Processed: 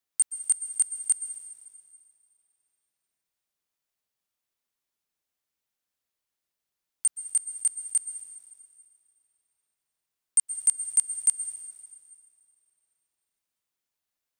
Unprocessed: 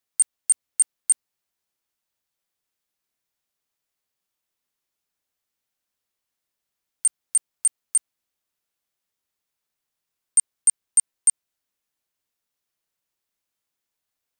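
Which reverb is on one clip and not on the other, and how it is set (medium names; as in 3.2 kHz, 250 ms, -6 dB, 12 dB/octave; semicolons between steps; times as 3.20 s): plate-style reverb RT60 2.3 s, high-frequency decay 0.9×, pre-delay 110 ms, DRR 10.5 dB; trim -4 dB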